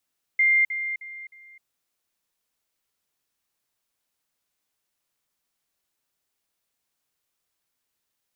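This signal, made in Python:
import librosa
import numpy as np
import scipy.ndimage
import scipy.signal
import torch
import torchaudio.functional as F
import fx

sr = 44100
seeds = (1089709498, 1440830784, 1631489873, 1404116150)

y = fx.level_ladder(sr, hz=2100.0, from_db=-16.0, step_db=-10.0, steps=4, dwell_s=0.26, gap_s=0.05)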